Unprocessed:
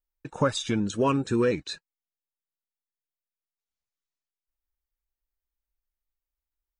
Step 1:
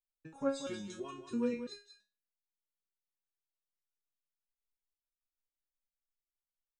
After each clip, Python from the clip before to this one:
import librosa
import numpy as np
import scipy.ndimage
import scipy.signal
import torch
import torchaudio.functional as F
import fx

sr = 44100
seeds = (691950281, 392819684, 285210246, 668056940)

y = x + 10.0 ** (-9.5 / 20.0) * np.pad(x, (int(185 * sr / 1000.0), 0))[:len(x)]
y = fx.resonator_held(y, sr, hz=3.0, low_hz=160.0, high_hz=410.0)
y = y * librosa.db_to_amplitude(-1.0)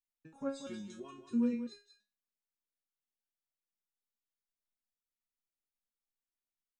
y = fx.peak_eq(x, sr, hz=230.0, db=11.5, octaves=0.26)
y = y * librosa.db_to_amplitude(-5.5)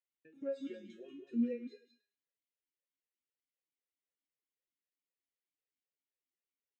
y = fx.echo_feedback(x, sr, ms=104, feedback_pct=30, wet_db=-15.0)
y = fx.vowel_sweep(y, sr, vowels='e-i', hz=3.9)
y = y * librosa.db_to_amplitude(8.5)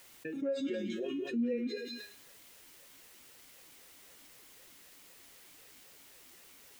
y = fx.env_flatten(x, sr, amount_pct=70)
y = y * librosa.db_to_amplitude(-1.5)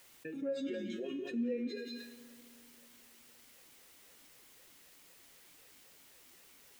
y = fx.rev_fdn(x, sr, rt60_s=2.6, lf_ratio=1.25, hf_ratio=0.7, size_ms=36.0, drr_db=14.0)
y = y * librosa.db_to_amplitude(-3.5)